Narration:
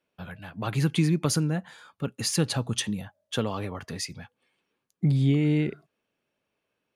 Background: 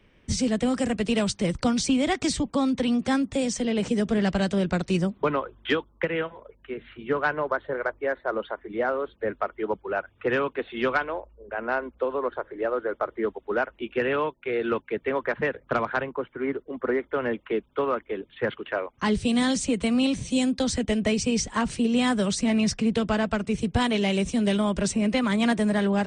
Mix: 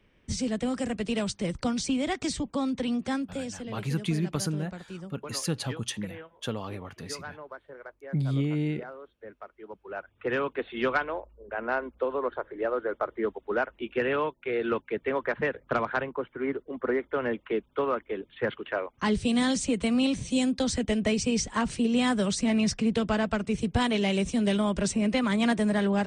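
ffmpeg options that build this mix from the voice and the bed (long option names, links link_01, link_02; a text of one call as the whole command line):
ffmpeg -i stem1.wav -i stem2.wav -filter_complex "[0:a]adelay=3100,volume=-5dB[link_01];[1:a]volume=9.5dB,afade=type=out:start_time=3:duration=0.84:silence=0.266073,afade=type=in:start_time=9.69:duration=0.86:silence=0.188365[link_02];[link_01][link_02]amix=inputs=2:normalize=0" out.wav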